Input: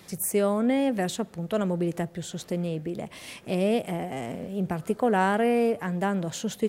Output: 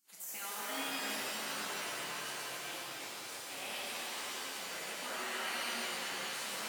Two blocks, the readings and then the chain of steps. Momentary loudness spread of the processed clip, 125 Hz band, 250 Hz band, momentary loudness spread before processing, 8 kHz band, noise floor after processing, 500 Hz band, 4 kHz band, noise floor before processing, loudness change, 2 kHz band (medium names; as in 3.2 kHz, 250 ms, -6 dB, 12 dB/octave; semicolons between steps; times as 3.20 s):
5 LU, -29.5 dB, -24.5 dB, 11 LU, -3.0 dB, -46 dBFS, -21.0 dB, +2.0 dB, -50 dBFS, -11.5 dB, -3.5 dB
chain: coarse spectral quantiser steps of 15 dB; high-pass 500 Hz 24 dB/octave; gate -43 dBFS, range -7 dB; spectral gate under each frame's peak -15 dB weak; peak limiter -32 dBFS, peak gain reduction 7.5 dB; ever faster or slower copies 163 ms, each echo -4 st, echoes 3, each echo -6 dB; pitch-shifted reverb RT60 3.2 s, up +7 st, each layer -2 dB, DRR -6 dB; trim -4.5 dB